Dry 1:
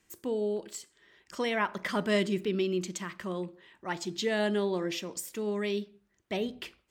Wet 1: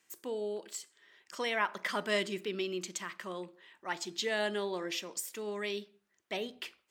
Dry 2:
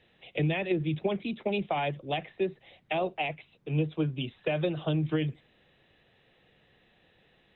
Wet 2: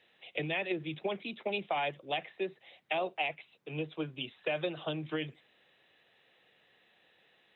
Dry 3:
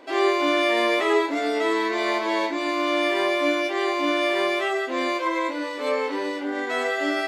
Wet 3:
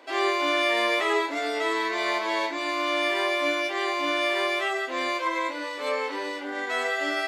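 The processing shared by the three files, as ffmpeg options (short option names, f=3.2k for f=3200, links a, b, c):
-af "highpass=f=680:p=1"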